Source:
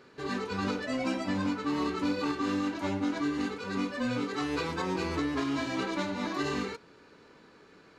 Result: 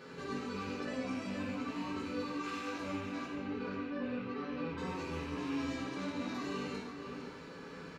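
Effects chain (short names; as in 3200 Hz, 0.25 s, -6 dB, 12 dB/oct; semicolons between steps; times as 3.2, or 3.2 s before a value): rattling part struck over -34 dBFS, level -29 dBFS; 2.34–2.74 HPF 1100 Hz -> 520 Hz 12 dB/oct; compressor 2:1, threshold -51 dBFS, peak gain reduction 14 dB; limiter -39 dBFS, peak gain reduction 7 dB; 3.26–4.78 air absorption 260 m; outdoor echo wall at 86 m, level -6 dB; reverb, pre-delay 3 ms, DRR -4.5 dB; gain +1.5 dB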